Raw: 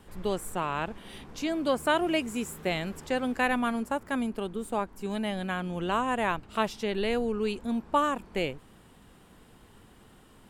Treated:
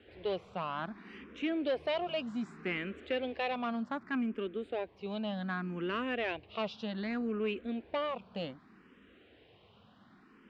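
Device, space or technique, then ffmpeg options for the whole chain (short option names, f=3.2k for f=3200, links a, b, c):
barber-pole phaser into a guitar amplifier: -filter_complex "[0:a]asplit=2[a][b];[b]afreqshift=0.65[c];[a][c]amix=inputs=2:normalize=1,asoftclip=type=tanh:threshold=-25.5dB,highpass=110,equalizer=f=140:t=q:w=4:g=-9,equalizer=f=890:t=q:w=4:g=-7,equalizer=f=2.5k:t=q:w=4:g=3,lowpass=f=4k:w=0.5412,lowpass=f=4k:w=1.3066"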